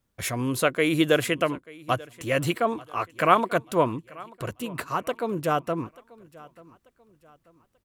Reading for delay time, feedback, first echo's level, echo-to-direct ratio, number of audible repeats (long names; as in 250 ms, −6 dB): 887 ms, 36%, −22.0 dB, −21.5 dB, 2